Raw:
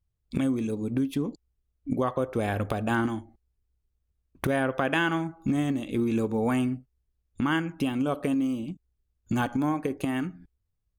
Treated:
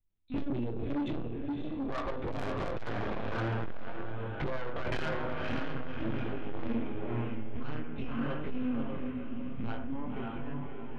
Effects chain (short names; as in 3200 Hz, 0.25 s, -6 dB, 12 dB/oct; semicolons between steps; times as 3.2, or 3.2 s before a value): ending faded out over 1.66 s; Doppler pass-by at 2.41, 23 m/s, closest 27 m; flutter echo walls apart 11.6 m, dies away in 0.34 s; LPC vocoder at 8 kHz pitch kept; diffused feedback echo 0.563 s, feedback 43%, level -3 dB; chorus 0.47 Hz, delay 20 ms, depth 7.4 ms; de-hum 51.48 Hz, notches 35; soft clip -36 dBFS, distortion -6 dB; vocal rider within 4 dB 2 s; gain +8 dB